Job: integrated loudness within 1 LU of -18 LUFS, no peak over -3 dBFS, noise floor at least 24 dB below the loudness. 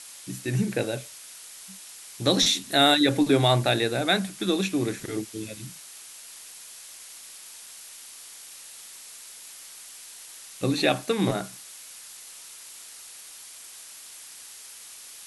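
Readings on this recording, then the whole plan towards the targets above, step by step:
noise floor -45 dBFS; noise floor target -48 dBFS; loudness -24.0 LUFS; peak level -7.5 dBFS; loudness target -18.0 LUFS
-> noise reduction 6 dB, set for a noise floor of -45 dBFS; trim +6 dB; peak limiter -3 dBFS

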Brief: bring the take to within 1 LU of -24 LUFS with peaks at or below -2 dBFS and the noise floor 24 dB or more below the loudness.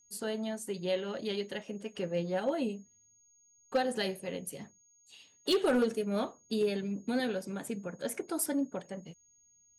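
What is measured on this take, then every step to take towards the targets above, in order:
clipped samples 0.4%; clipping level -22.0 dBFS; steady tone 6.6 kHz; tone level -63 dBFS; loudness -34.0 LUFS; peak level -22.0 dBFS; loudness target -24.0 LUFS
-> clip repair -22 dBFS; band-stop 6.6 kHz, Q 30; trim +10 dB

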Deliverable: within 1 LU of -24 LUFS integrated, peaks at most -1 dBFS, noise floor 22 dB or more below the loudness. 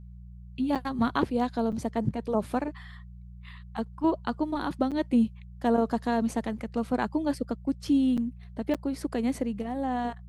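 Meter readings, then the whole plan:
dropouts 5; longest dropout 7.1 ms; hum 60 Hz; highest harmonic 180 Hz; hum level -42 dBFS; loudness -29.0 LUFS; peak level -11.5 dBFS; loudness target -24.0 LUFS
-> interpolate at 0.75/1.72/4.91/8.17/8.74 s, 7.1 ms; de-hum 60 Hz, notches 3; trim +5 dB

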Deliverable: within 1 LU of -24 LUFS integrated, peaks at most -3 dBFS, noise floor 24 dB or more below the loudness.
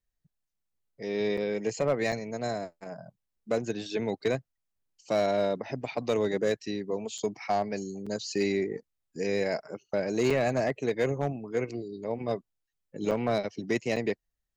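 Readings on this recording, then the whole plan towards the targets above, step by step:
clipped samples 0.4%; clipping level -19.0 dBFS; dropouts 7; longest dropout 5.6 ms; loudness -30.5 LUFS; peak level -19.0 dBFS; loudness target -24.0 LUFS
-> clip repair -19 dBFS; interpolate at 1.37/2.12/7.18/8.06/10.30/13.11/13.96 s, 5.6 ms; trim +6.5 dB

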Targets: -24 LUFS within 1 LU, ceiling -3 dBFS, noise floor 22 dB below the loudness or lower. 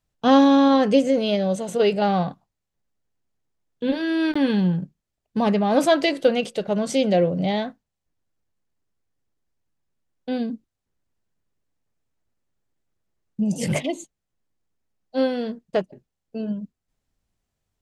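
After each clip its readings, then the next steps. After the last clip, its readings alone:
dropouts 1; longest dropout 15 ms; loudness -21.5 LUFS; peak level -4.5 dBFS; loudness target -24.0 LUFS
-> interpolate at 4.34 s, 15 ms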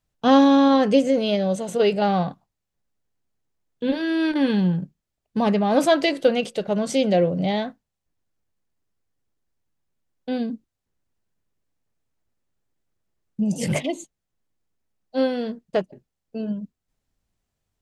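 dropouts 0; loudness -21.5 LUFS; peak level -4.5 dBFS; loudness target -24.0 LUFS
-> trim -2.5 dB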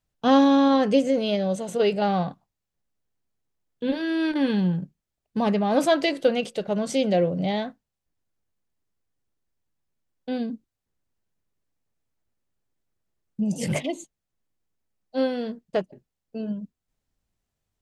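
loudness -24.0 LUFS; peak level -7.0 dBFS; noise floor -84 dBFS

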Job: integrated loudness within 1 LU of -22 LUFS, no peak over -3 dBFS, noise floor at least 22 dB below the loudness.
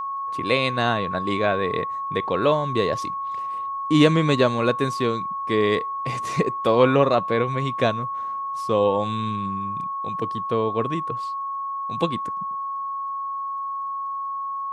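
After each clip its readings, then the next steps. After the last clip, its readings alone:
tick rate 25 per s; steady tone 1.1 kHz; tone level -26 dBFS; loudness -23.5 LUFS; peak level -4.5 dBFS; loudness target -22.0 LUFS
-> de-click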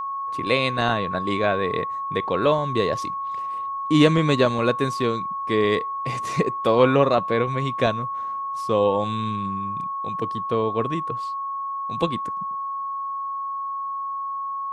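tick rate 0 per s; steady tone 1.1 kHz; tone level -26 dBFS
-> band-stop 1.1 kHz, Q 30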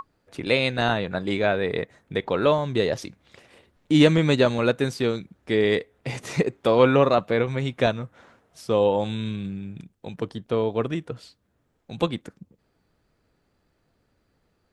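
steady tone not found; loudness -23.5 LUFS; peak level -3.5 dBFS; loudness target -22.0 LUFS
-> trim +1.5 dB; peak limiter -3 dBFS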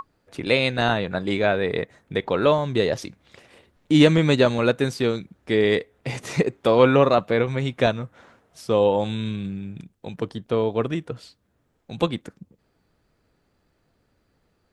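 loudness -22.0 LUFS; peak level -3.0 dBFS; noise floor -69 dBFS

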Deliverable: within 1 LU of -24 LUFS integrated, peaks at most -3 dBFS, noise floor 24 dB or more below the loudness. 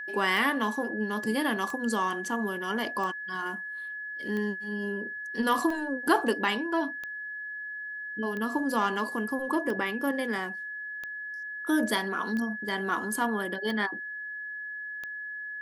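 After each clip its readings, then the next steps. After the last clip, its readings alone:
clicks found 12; steady tone 1.7 kHz; tone level -35 dBFS; loudness -30.0 LUFS; peak level -11.5 dBFS; loudness target -24.0 LUFS
-> de-click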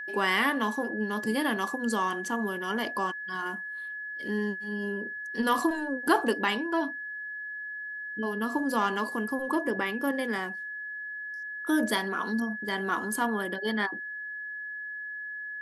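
clicks found 0; steady tone 1.7 kHz; tone level -35 dBFS
-> band-stop 1.7 kHz, Q 30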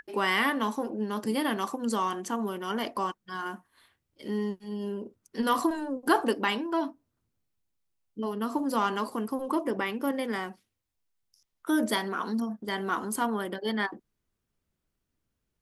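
steady tone not found; loudness -30.0 LUFS; peak level -12.0 dBFS; loudness target -24.0 LUFS
-> trim +6 dB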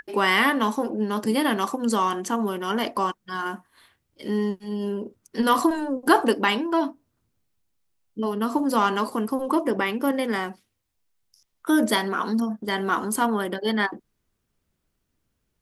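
loudness -24.0 LUFS; peak level -6.0 dBFS; noise floor -76 dBFS

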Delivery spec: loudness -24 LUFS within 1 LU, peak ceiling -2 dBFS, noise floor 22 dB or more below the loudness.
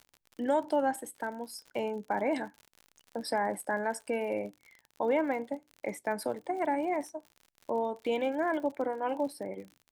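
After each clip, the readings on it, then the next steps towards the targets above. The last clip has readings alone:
tick rate 58 per s; loudness -33.0 LUFS; peak level -17.5 dBFS; loudness target -24.0 LUFS
-> de-click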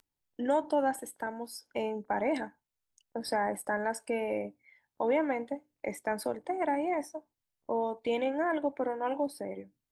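tick rate 0.40 per s; loudness -33.0 LUFS; peak level -17.5 dBFS; loudness target -24.0 LUFS
-> trim +9 dB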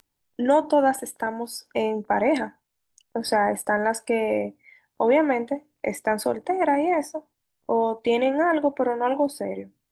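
loudness -24.0 LUFS; peak level -8.5 dBFS; noise floor -79 dBFS

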